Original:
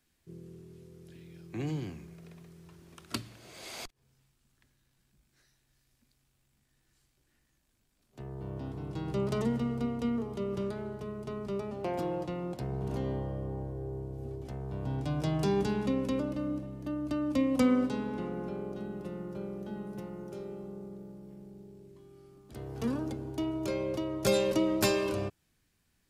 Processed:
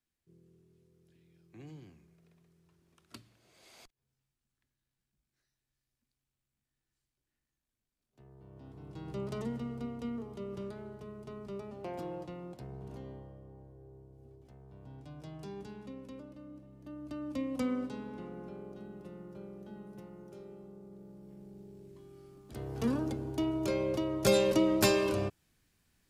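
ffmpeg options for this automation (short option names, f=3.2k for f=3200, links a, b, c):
-af "volume=10dB,afade=t=in:st=8.51:d=0.6:silence=0.398107,afade=t=out:st=12.15:d=1.26:silence=0.354813,afade=t=in:st=16.51:d=0.75:silence=0.398107,afade=t=in:st=20.82:d=1.14:silence=0.354813"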